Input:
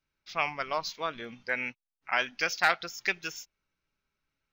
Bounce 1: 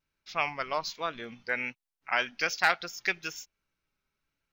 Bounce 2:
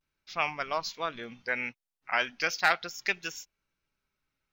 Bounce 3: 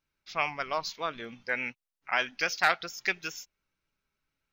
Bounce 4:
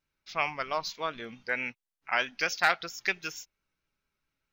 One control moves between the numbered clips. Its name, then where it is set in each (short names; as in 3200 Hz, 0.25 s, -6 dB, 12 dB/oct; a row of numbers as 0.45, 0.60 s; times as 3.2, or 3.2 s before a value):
vibrato, rate: 1.2, 0.38, 7, 4.5 Hz